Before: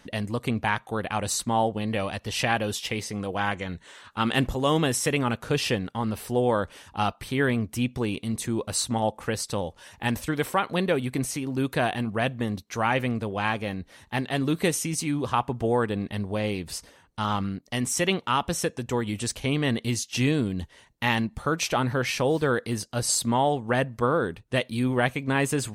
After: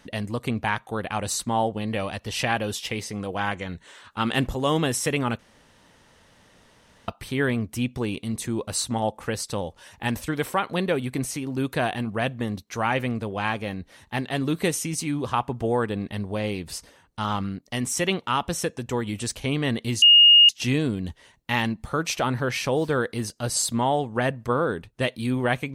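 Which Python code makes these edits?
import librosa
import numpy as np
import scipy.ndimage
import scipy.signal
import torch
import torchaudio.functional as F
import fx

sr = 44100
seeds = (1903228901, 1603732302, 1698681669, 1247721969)

y = fx.edit(x, sr, fx.room_tone_fill(start_s=5.39, length_s=1.69),
    fx.insert_tone(at_s=20.02, length_s=0.47, hz=2850.0, db=-9.5), tone=tone)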